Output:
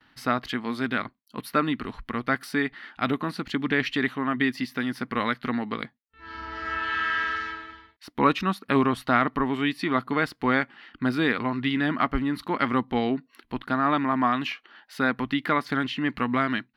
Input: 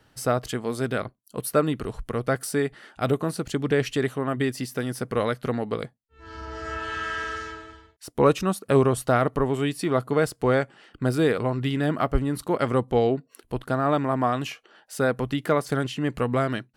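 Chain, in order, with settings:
noise gate with hold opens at −51 dBFS
octave-band graphic EQ 125/250/500/1,000/2,000/4,000/8,000 Hz −4/+11/−7/+8/+11/+10/−12 dB
level −6.5 dB

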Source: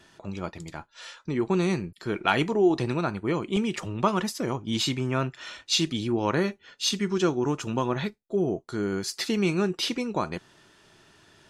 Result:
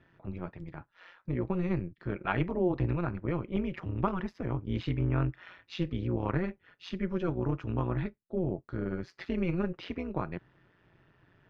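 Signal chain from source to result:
octave-band graphic EQ 125/2,000/4,000/8,000 Hz +11/+4/−6/−9 dB
amplitude modulation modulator 180 Hz, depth 70%
high-frequency loss of the air 240 metres
level −4.5 dB

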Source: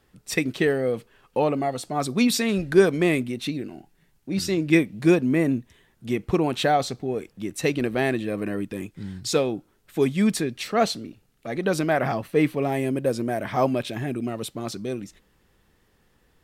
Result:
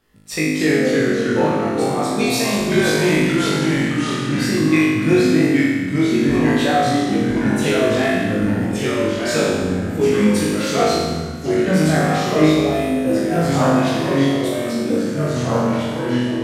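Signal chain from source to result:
flutter between parallel walls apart 3.3 metres, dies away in 1.3 s
delay with pitch and tempo change per echo 242 ms, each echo −2 semitones, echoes 3
level −2.5 dB

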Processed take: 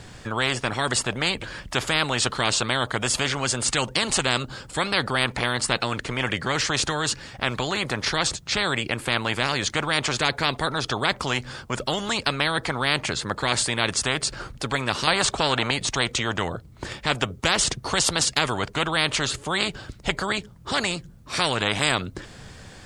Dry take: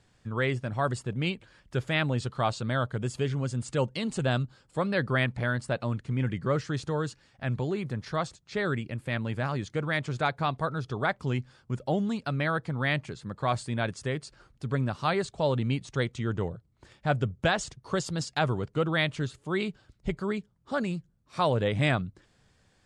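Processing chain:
0:15.07–0:15.71: parametric band 810 Hz +13 dB 2.1 octaves
every bin compressed towards the loudest bin 4 to 1

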